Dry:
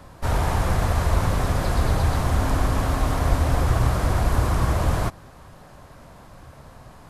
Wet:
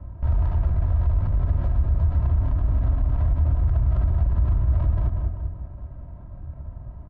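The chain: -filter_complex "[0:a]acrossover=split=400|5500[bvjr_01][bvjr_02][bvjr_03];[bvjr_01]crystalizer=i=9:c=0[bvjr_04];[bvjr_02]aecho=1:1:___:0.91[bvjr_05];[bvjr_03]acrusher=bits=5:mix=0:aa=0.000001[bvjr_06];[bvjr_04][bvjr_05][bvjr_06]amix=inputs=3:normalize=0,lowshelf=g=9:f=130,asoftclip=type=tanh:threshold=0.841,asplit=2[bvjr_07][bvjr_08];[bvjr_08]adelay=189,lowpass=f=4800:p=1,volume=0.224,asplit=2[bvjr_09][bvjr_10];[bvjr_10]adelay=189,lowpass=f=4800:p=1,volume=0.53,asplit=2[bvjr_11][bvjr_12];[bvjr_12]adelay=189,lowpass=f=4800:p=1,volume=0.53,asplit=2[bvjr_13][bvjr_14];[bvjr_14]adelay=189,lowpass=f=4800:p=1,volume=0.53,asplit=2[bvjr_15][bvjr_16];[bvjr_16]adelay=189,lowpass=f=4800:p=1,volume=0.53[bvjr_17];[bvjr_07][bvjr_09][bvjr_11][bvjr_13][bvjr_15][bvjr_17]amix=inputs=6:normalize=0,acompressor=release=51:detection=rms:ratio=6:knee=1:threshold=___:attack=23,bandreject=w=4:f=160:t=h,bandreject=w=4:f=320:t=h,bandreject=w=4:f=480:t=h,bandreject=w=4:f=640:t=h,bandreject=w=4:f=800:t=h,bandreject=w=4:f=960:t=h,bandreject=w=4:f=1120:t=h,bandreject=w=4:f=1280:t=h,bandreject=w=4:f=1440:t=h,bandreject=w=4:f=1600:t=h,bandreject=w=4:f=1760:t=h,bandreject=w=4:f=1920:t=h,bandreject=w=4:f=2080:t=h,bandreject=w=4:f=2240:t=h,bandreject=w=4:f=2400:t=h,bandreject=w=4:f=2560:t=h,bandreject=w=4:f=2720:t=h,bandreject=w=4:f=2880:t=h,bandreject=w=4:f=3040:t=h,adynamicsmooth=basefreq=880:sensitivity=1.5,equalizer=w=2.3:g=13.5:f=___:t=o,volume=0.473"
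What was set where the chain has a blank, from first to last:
3.1, 0.0631, 63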